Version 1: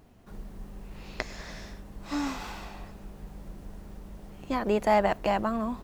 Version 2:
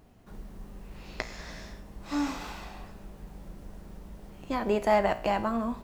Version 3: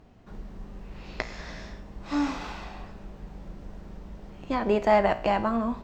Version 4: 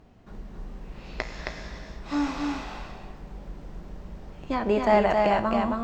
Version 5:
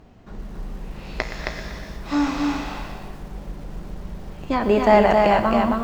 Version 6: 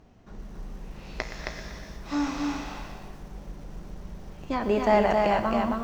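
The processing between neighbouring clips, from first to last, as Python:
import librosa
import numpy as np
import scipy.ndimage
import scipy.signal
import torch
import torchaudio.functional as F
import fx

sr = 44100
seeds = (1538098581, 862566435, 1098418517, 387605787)

y1 = fx.comb_fb(x, sr, f0_hz=58.0, decay_s=0.53, harmonics='all', damping=0.0, mix_pct=60)
y1 = F.gain(torch.from_numpy(y1), 4.5).numpy()
y2 = scipy.signal.lfilter(np.full(4, 1.0 / 4), 1.0, y1)
y2 = F.gain(torch.from_numpy(y2), 3.0).numpy()
y3 = y2 + 10.0 ** (-3.5 / 20.0) * np.pad(y2, (int(268 * sr / 1000.0), 0))[:len(y2)]
y4 = fx.echo_crushed(y3, sr, ms=120, feedback_pct=55, bits=8, wet_db=-12.5)
y4 = F.gain(torch.from_numpy(y4), 5.5).numpy()
y5 = fx.peak_eq(y4, sr, hz=5900.0, db=6.0, octaves=0.28)
y5 = F.gain(torch.from_numpy(y5), -6.5).numpy()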